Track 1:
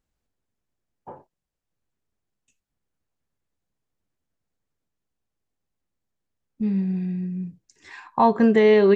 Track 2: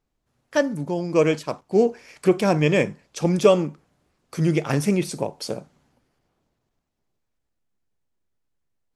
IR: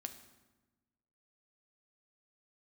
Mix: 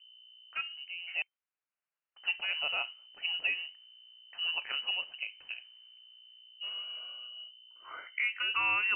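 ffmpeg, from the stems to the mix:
-filter_complex "[0:a]highpass=f=980:p=1,volume=-3.5dB[a];[1:a]dynaudnorm=f=220:g=17:m=11.5dB,aeval=exprs='val(0)+0.0126*(sin(2*PI*60*n/s)+sin(2*PI*2*60*n/s)/2+sin(2*PI*3*60*n/s)/3+sin(2*PI*4*60*n/s)/4+sin(2*PI*5*60*n/s)/5)':c=same,volume=-17.5dB,asplit=3[b][c][d];[b]atrim=end=1.22,asetpts=PTS-STARTPTS,afade=t=out:st=1.216:d=0.004:c=hsin[e];[c]atrim=start=1.22:end=2.16,asetpts=PTS-STARTPTS,volume=0[f];[d]atrim=start=2.16,asetpts=PTS-STARTPTS,afade=t=in:d=0.004:c=hsin[g];[e][f][g]concat=n=3:v=0:a=1[h];[a][h]amix=inputs=2:normalize=0,equalizer=f=1.7k:w=1.5:g=3,lowpass=f=2.6k:t=q:w=0.5098,lowpass=f=2.6k:t=q:w=0.6013,lowpass=f=2.6k:t=q:w=0.9,lowpass=f=2.6k:t=q:w=2.563,afreqshift=-3100,alimiter=limit=-21.5dB:level=0:latency=1:release=425"

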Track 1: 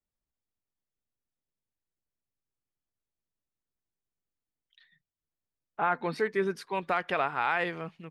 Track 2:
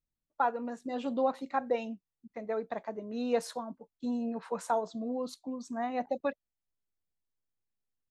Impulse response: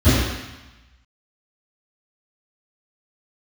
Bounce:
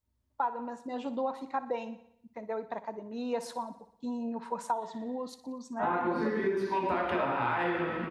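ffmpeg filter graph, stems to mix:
-filter_complex "[0:a]lowshelf=f=200:g=-5.5,volume=-1dB,asplit=2[a][b];[b]volume=-17dB[c];[1:a]volume=-2dB,asplit=3[d][e][f];[e]volume=-15dB[g];[f]apad=whole_len=357447[h];[a][h]sidechaincompress=threshold=-43dB:ratio=8:attack=16:release=404[i];[2:a]atrim=start_sample=2205[j];[c][j]afir=irnorm=-1:irlink=0[k];[g]aecho=0:1:60|120|180|240|300|360|420|480|540:1|0.57|0.325|0.185|0.106|0.0602|0.0343|0.0195|0.0111[l];[i][d][k][l]amix=inputs=4:normalize=0,equalizer=f=940:t=o:w=0.2:g=11.5,acompressor=threshold=-27dB:ratio=6"

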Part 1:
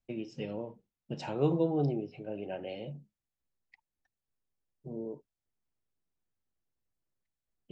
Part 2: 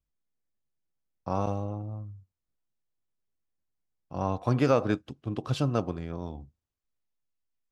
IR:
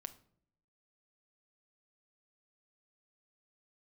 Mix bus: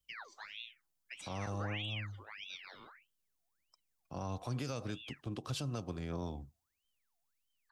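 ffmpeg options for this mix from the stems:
-filter_complex "[0:a]aecho=1:1:2.8:0.51,aeval=exprs='val(0)*sin(2*PI*1900*n/s+1900*0.65/1.6*sin(2*PI*1.6*n/s))':c=same,volume=-11.5dB[a];[1:a]volume=-3dB[b];[a][b]amix=inputs=2:normalize=0,highshelf=f=3.6k:g=11.5,acrossover=split=180|3000[c][d][e];[d]acompressor=threshold=-33dB:ratio=6[f];[c][f][e]amix=inputs=3:normalize=0,alimiter=level_in=5.5dB:limit=-24dB:level=0:latency=1:release=266,volume=-5.5dB"

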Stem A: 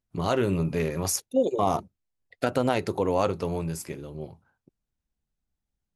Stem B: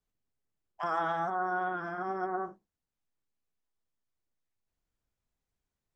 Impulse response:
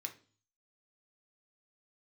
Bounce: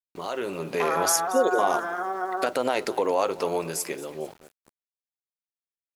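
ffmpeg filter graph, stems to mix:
-filter_complex "[0:a]alimiter=limit=-19dB:level=0:latency=1:release=150,volume=0.5dB,asplit=2[a][b];[b]volume=-18dB[c];[1:a]acompressor=threshold=-39dB:ratio=2,lowpass=5.2k,volume=3dB[d];[c]aecho=0:1:225|450|675|900|1125|1350:1|0.43|0.185|0.0795|0.0342|0.0147[e];[a][d][e]amix=inputs=3:normalize=0,highpass=420,dynaudnorm=f=180:g=7:m=8dB,aeval=exprs='val(0)*gte(abs(val(0)),0.00447)':c=same"

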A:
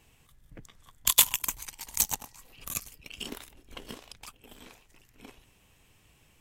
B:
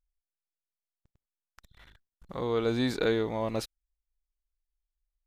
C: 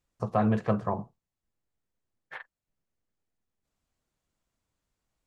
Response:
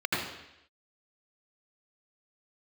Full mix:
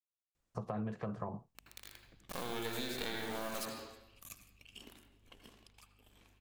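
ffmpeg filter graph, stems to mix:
-filter_complex "[0:a]asoftclip=type=hard:threshold=-21.5dB,aeval=exprs='val(0)+0.00282*(sin(2*PI*50*n/s)+sin(2*PI*2*50*n/s)/2+sin(2*PI*3*50*n/s)/3+sin(2*PI*4*50*n/s)/4+sin(2*PI*5*50*n/s)/5)':c=same,adelay=1550,volume=-16.5dB,asplit=2[a][b];[b]volume=-17.5dB[c];[1:a]acrusher=bits=5:dc=4:mix=0:aa=0.000001,aeval=exprs='max(val(0),0)':c=same,highshelf=f=3.6k:g=12,volume=-1.5dB,asplit=2[d][e];[e]volume=-11dB[f];[2:a]alimiter=limit=-17.5dB:level=0:latency=1:release=67,acrossover=split=490[g][h];[h]acompressor=threshold=-30dB:ratio=6[i];[g][i]amix=inputs=2:normalize=0,adelay=350,volume=-2.5dB[j];[3:a]atrim=start_sample=2205[k];[c][f]amix=inputs=2:normalize=0[l];[l][k]afir=irnorm=-1:irlink=0[m];[a][d][j][m]amix=inputs=4:normalize=0,acompressor=threshold=-37dB:ratio=4"

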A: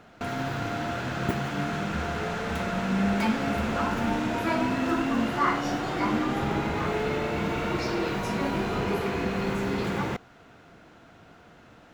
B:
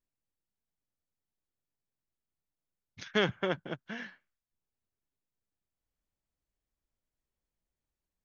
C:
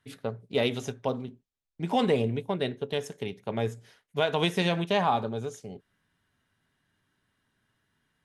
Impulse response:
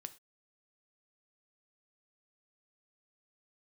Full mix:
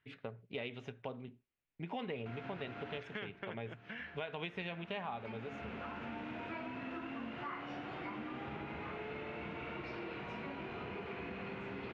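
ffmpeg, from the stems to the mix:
-filter_complex "[0:a]equalizer=f=1.9k:w=1.5:g=-3,bandreject=f=50:t=h:w=6,bandreject=f=100:t=h:w=6,bandreject=f=150:t=h:w=6,bandreject=f=200:t=h:w=6,adelay=2050,volume=-6.5dB,asplit=2[a][b];[b]volume=-23.5dB[c];[1:a]volume=-1dB,asplit=2[d][e];[2:a]volume=-10dB,asplit=2[f][g];[g]volume=-6.5dB[h];[e]apad=whole_len=616667[i];[a][i]sidechaincompress=threshold=-49dB:ratio=8:attack=5:release=1470[j];[j][d]amix=inputs=2:normalize=0,highpass=52,acompressor=threshold=-54dB:ratio=1.5,volume=0dB[k];[3:a]atrim=start_sample=2205[l];[c][h]amix=inputs=2:normalize=0[m];[m][l]afir=irnorm=-1:irlink=0[n];[f][k][n]amix=inputs=3:normalize=0,lowpass=f=2.5k:t=q:w=2.4,acompressor=threshold=-41dB:ratio=3"

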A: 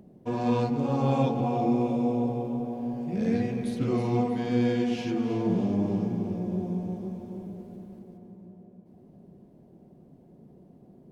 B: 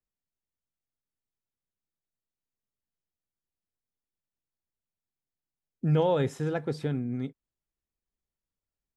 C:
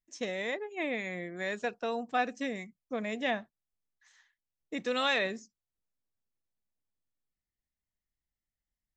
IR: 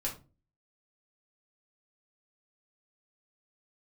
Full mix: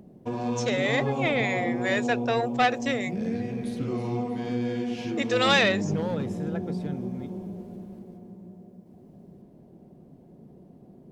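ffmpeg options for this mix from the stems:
-filter_complex "[0:a]acompressor=threshold=-33dB:ratio=2,volume=2.5dB[a];[1:a]asoftclip=type=hard:threshold=-20dB,volume=-6dB[b];[2:a]equalizer=f=510:t=o:w=2.8:g=14.5,asoftclip=type=tanh:threshold=-12.5dB,tiltshelf=f=1.2k:g=-9.5,adelay=450,volume=1dB,asplit=3[c][d][e];[c]atrim=end=3.11,asetpts=PTS-STARTPTS,afade=t=out:st=3.106:d=0.004:c=hsin[f];[d]atrim=start=3.11:end=4.66,asetpts=PTS-STARTPTS,volume=0[g];[e]atrim=start=4.66,asetpts=PTS-STARTPTS,afade=t=in:d=0.004:c=hsin[h];[f][g][h]concat=n=3:v=0:a=1[i];[a][b][i]amix=inputs=3:normalize=0"

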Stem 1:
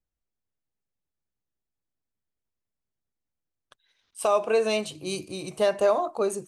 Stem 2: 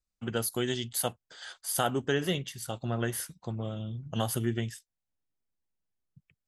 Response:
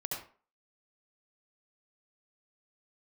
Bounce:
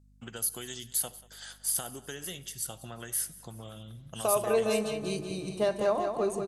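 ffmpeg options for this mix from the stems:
-filter_complex "[0:a]lowshelf=f=230:g=11.5,volume=-6.5dB,asplit=2[a][b];[b]volume=-6.5dB[c];[1:a]acrossover=split=720|5600[d][e][f];[d]acompressor=threshold=-40dB:ratio=4[g];[e]acompressor=threshold=-41dB:ratio=4[h];[f]acompressor=threshold=-35dB:ratio=4[i];[g][h][i]amix=inputs=3:normalize=0,equalizer=f=10k:w=0.58:g=12,volume=-4.5dB,asplit=3[j][k][l];[k]volume=-18.5dB[m];[l]volume=-20dB[n];[2:a]atrim=start_sample=2205[o];[m][o]afir=irnorm=-1:irlink=0[p];[c][n]amix=inputs=2:normalize=0,aecho=0:1:187|374|561|748|935|1122|1309:1|0.5|0.25|0.125|0.0625|0.0312|0.0156[q];[a][j][p][q]amix=inputs=4:normalize=0,aeval=exprs='val(0)+0.00112*(sin(2*PI*50*n/s)+sin(2*PI*2*50*n/s)/2+sin(2*PI*3*50*n/s)/3+sin(2*PI*4*50*n/s)/4+sin(2*PI*5*50*n/s)/5)':c=same"

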